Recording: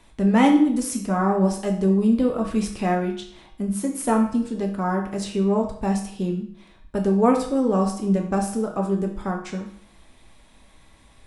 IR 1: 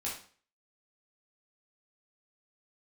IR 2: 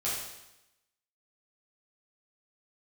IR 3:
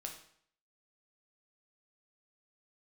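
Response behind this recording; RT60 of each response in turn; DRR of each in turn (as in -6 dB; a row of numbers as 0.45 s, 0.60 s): 3; 0.45 s, 0.90 s, 0.60 s; -6.5 dB, -9.0 dB, 1.5 dB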